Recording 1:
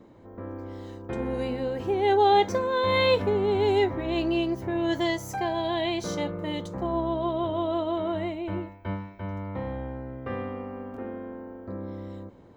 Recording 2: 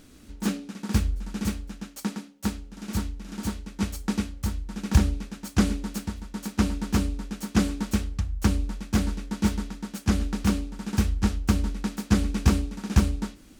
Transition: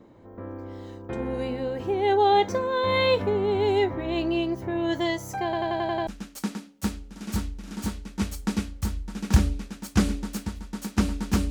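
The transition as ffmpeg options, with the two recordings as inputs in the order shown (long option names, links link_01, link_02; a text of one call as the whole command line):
ffmpeg -i cue0.wav -i cue1.wav -filter_complex "[0:a]apad=whole_dur=11.5,atrim=end=11.5,asplit=7[link_01][link_02][link_03][link_04][link_05][link_06][link_07];[link_01]atrim=end=5.532[link_08];[link_02]atrim=start=5.438:end=5.532[link_09];[link_03]atrim=start=5.438:end=5.532[link_10];[link_04]atrim=start=5.438:end=5.532[link_11];[link_05]atrim=start=5.438:end=5.532[link_12];[link_06]atrim=start=5.438:end=5.532[link_13];[link_07]atrim=start=5.438:end=5.532[link_14];[1:a]atrim=start=1.678:end=7.11[link_15];[link_08][link_09]acrossfade=duration=0.004:curve1=hsin:curve2=hsin[link_16];[link_16][link_10]acrossfade=duration=0.004:curve1=hsin:curve2=hsin[link_17];[link_17][link_11]acrossfade=duration=0.004:curve1=hsin:curve2=hsin[link_18];[link_18][link_12]acrossfade=duration=0.004:curve1=hsin:curve2=hsin[link_19];[link_19][link_13]acrossfade=duration=0.004:curve1=hsin:curve2=hsin[link_20];[link_20][link_14]acrossfade=duration=0.004:curve1=hsin:curve2=hsin[link_21];[link_21][link_15]acrossfade=duration=0.004:curve1=hsin:curve2=hsin" out.wav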